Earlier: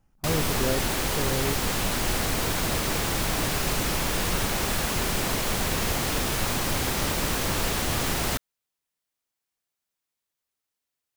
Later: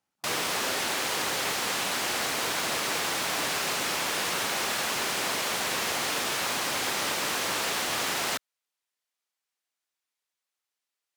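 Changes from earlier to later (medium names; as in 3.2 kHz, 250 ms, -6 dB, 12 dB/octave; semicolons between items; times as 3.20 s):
speech -8.0 dB; master: add frequency weighting A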